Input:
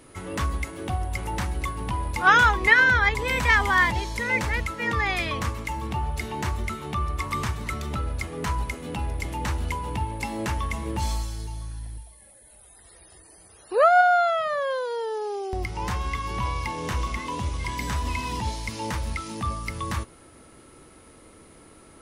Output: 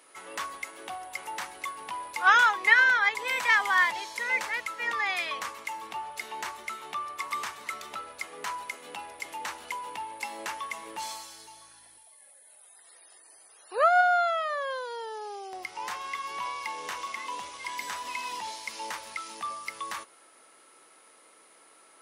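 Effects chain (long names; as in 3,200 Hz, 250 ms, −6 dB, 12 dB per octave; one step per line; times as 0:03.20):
high-pass filter 690 Hz 12 dB per octave
level −2.5 dB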